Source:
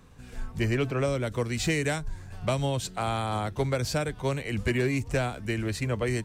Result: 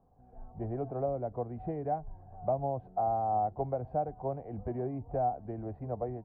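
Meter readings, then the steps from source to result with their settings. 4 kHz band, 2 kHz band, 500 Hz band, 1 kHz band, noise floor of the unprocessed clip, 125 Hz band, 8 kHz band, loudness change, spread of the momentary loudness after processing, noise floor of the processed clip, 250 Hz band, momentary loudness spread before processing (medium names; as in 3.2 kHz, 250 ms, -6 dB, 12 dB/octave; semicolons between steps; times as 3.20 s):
under -40 dB, under -25 dB, -4.0 dB, +2.0 dB, -46 dBFS, -10.5 dB, under -40 dB, -6.0 dB, 9 LU, -58 dBFS, -9.5 dB, 5 LU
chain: level rider gain up to 4.5 dB; four-pole ladder low-pass 780 Hz, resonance 80%; trim -2.5 dB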